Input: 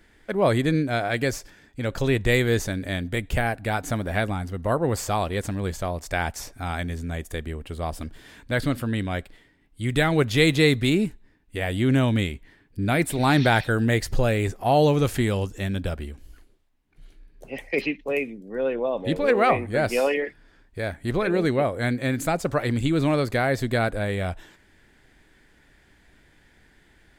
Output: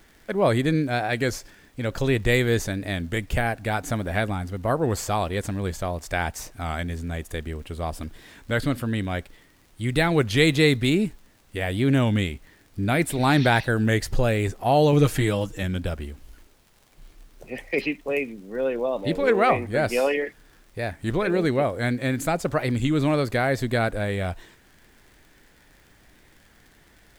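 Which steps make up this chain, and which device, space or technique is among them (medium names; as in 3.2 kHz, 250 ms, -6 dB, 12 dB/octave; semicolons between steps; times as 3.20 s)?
14.92–15.64 s: comb 6.5 ms, depth 70%; warped LP (warped record 33 1/3 rpm, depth 100 cents; crackle 77 per s -43 dBFS; pink noise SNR 36 dB)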